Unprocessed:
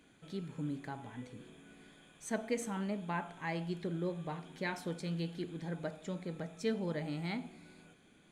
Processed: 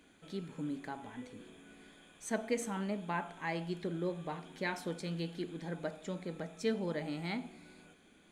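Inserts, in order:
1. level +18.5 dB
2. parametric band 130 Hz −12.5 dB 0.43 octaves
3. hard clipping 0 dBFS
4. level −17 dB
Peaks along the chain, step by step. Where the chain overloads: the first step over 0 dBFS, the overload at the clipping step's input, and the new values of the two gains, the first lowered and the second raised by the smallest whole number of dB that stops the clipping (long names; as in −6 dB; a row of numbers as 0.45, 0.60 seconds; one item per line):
−4.0, −4.0, −4.0, −21.0 dBFS
no step passes full scale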